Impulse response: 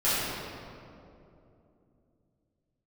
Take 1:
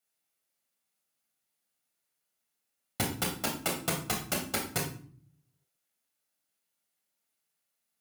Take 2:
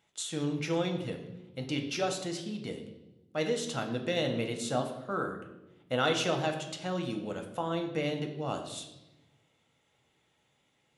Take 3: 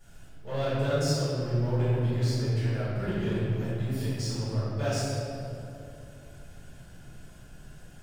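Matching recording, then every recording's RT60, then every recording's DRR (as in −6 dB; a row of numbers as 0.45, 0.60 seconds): 3; 0.50, 1.0, 2.8 seconds; −0.5, 3.5, −13.5 decibels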